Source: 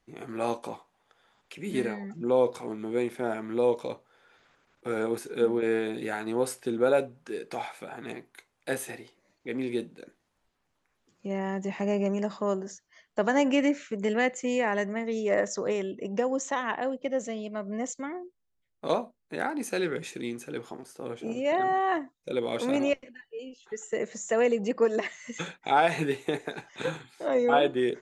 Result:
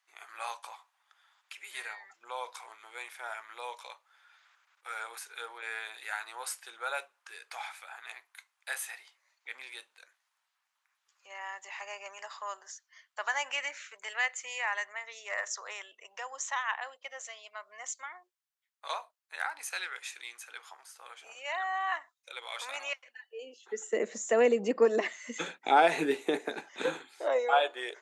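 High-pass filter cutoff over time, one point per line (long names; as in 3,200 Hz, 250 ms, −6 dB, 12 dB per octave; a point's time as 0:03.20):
high-pass filter 24 dB per octave
0:22.99 960 Hz
0:23.80 230 Hz
0:26.89 230 Hz
0:27.49 630 Hz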